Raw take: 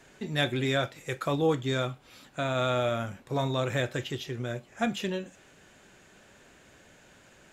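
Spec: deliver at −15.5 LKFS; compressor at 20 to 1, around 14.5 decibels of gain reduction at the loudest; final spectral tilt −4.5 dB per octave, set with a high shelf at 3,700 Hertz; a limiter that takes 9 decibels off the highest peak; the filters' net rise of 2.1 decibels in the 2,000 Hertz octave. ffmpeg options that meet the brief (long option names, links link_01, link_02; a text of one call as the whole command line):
ffmpeg -i in.wav -af "equalizer=frequency=2000:width_type=o:gain=4,highshelf=frequency=3700:gain=-5,acompressor=threshold=-35dB:ratio=20,volume=27dB,alimiter=limit=-4dB:level=0:latency=1" out.wav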